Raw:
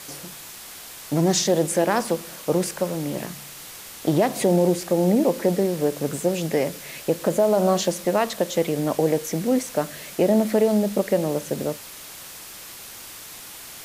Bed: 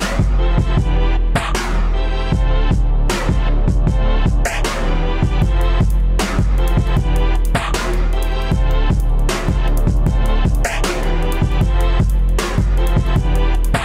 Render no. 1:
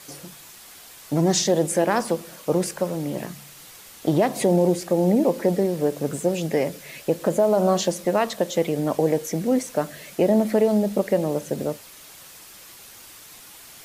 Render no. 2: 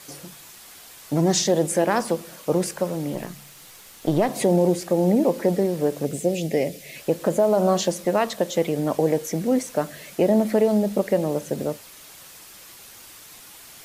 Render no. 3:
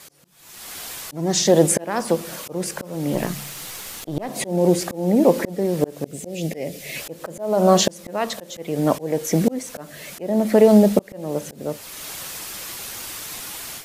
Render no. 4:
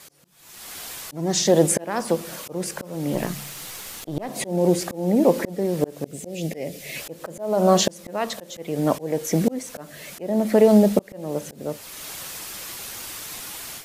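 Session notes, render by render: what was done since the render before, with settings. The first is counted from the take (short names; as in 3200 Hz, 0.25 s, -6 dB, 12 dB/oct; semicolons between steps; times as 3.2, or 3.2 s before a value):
denoiser 6 dB, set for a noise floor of -40 dBFS
3.14–4.29 half-wave gain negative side -3 dB; 6.05–6.96 band shelf 1200 Hz -11.5 dB 1.1 oct
auto swell 0.572 s; AGC gain up to 11.5 dB
gain -2 dB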